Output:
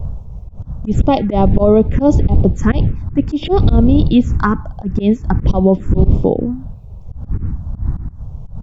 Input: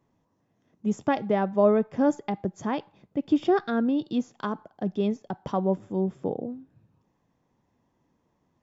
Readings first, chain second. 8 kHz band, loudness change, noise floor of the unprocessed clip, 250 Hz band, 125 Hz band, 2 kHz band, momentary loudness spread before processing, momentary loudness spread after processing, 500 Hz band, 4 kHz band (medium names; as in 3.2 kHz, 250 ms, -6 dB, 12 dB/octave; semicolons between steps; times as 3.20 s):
no reading, +12.0 dB, -73 dBFS, +12.0 dB, +22.0 dB, +8.5 dB, 12 LU, 19 LU, +9.5 dB, +12.5 dB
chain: wind noise 92 Hz -27 dBFS; touch-sensitive phaser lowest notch 250 Hz, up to 1.7 kHz, full sweep at -19 dBFS; slow attack 131 ms; loudness maximiser +18.5 dB; trim -1 dB